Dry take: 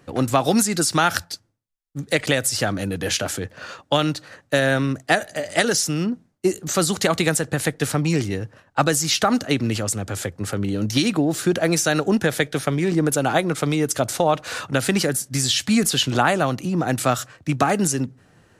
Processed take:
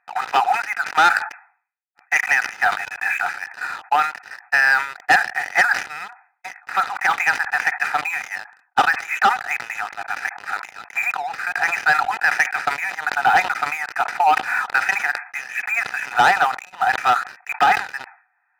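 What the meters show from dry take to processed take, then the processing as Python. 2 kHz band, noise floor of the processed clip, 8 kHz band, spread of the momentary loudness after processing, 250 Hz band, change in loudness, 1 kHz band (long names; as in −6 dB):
+9.0 dB, −67 dBFS, −13.0 dB, 12 LU, −22.0 dB, +1.5 dB, +7.0 dB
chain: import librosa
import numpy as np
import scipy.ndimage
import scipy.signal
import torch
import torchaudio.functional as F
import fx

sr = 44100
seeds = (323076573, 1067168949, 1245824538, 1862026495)

y = fx.brickwall_bandpass(x, sr, low_hz=700.0, high_hz=2600.0)
y = fx.leveller(y, sr, passes=3)
y = fx.notch_comb(y, sr, f0_hz=1100.0)
y = fx.sustainer(y, sr, db_per_s=130.0)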